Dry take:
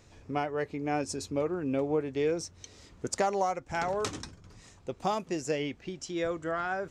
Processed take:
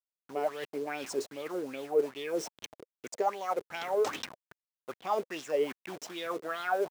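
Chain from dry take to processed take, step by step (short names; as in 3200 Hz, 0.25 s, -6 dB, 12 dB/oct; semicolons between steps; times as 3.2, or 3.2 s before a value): level-crossing sampler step -40 dBFS; reverse; compressor, threshold -36 dBFS, peak gain reduction 13 dB; reverse; Bessel high-pass 290 Hz, order 2; LFO bell 2.5 Hz 410–3500 Hz +17 dB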